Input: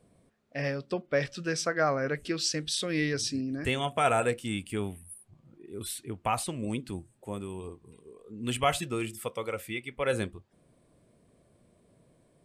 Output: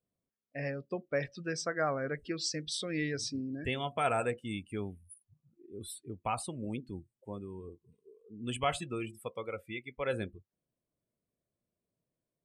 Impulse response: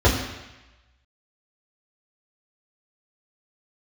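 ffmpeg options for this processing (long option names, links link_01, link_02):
-af "afftdn=noise_reduction=21:noise_floor=-40,volume=-5dB"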